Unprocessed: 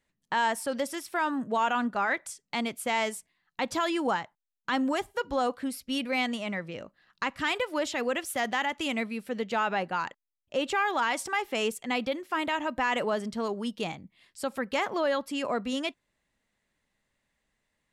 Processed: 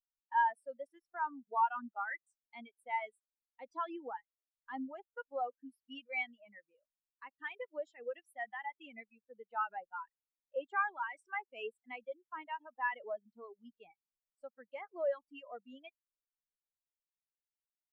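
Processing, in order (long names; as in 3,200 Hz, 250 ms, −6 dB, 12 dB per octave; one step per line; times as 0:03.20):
high-shelf EQ 4,000 Hz −8.5 dB
reverb reduction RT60 0.97 s
spectral tilt +3 dB per octave
background noise pink −59 dBFS
every bin expanded away from the loudest bin 2.5 to 1
level −4.5 dB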